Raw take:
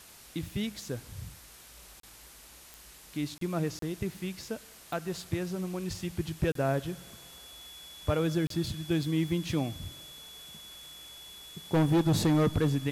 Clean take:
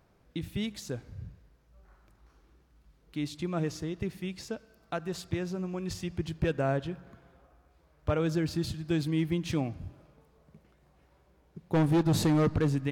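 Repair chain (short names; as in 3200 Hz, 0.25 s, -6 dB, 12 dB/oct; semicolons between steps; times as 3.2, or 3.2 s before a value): de-click; notch 3400 Hz, Q 30; interpolate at 2/3.38/3.79/6.52/8.47, 33 ms; noise print and reduce 12 dB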